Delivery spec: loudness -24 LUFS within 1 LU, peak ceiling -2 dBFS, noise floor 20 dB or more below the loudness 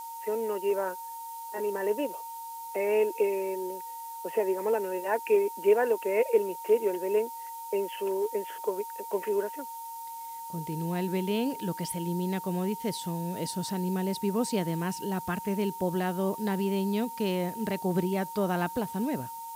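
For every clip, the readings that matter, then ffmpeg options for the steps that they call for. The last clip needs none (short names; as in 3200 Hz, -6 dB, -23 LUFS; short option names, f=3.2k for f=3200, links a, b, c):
steady tone 920 Hz; tone level -38 dBFS; noise floor -40 dBFS; noise floor target -51 dBFS; loudness -30.5 LUFS; peak -12.5 dBFS; loudness target -24.0 LUFS
-> -af "bandreject=f=920:w=30"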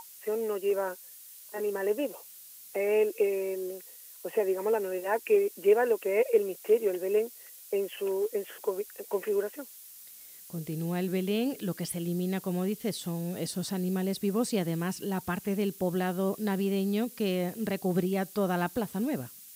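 steady tone none; noise floor -50 dBFS; noise floor target -51 dBFS
-> -af "afftdn=nr=6:nf=-50"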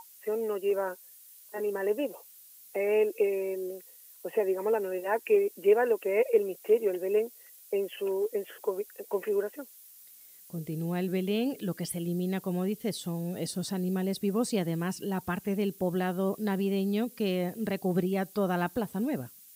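noise floor -54 dBFS; loudness -30.5 LUFS; peak -12.5 dBFS; loudness target -24.0 LUFS
-> -af "volume=6.5dB"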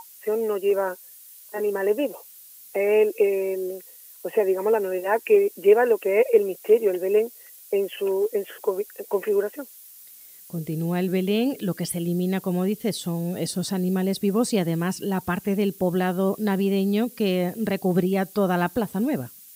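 loudness -24.0 LUFS; peak -6.0 dBFS; noise floor -47 dBFS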